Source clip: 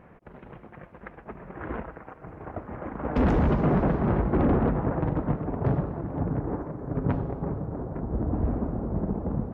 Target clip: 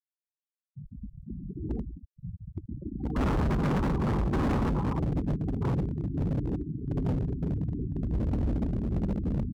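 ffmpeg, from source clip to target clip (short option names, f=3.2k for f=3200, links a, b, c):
-filter_complex "[0:a]asettb=1/sr,asplit=3[a][b][c];[a]atrim=end=0.754[d];[b]atrim=start=0.75:end=2.36,asetpts=PTS-STARTPTS,afade=t=in:d=0.004:c=qsin,afade=t=out:st=1.606:d=0.004:c=qsin,aeval=exprs='val(0)+0.5*0.0133*sgn(val(0))':c=same[e];[c]atrim=start=2.356[f];[d][e]acrossfade=d=0.004:c1=hsin:c2=qsin[g];[g][f]acrossfade=d=0.004:c1=qsin:c2=hsin,afwtdn=0.0398,asuperstop=centerf=670:order=8:qfactor=5.8,aecho=1:1:0.9:0.7,asplit=2[h][i];[i]adelay=61,lowpass=f=1.1k:p=1,volume=-22.5dB,asplit=2[j][k];[k]adelay=61,lowpass=f=1.1k:p=1,volume=0.31[l];[h][j][l]amix=inputs=3:normalize=0,acrusher=bits=8:dc=4:mix=0:aa=0.000001,afftfilt=real='re*gte(hypot(re,im),0.0447)':imag='im*gte(hypot(re,im),0.0447)':win_size=1024:overlap=0.75,asoftclip=type=hard:threshold=-23.5dB,highshelf=f=2.7k:g=9,volume=-1dB"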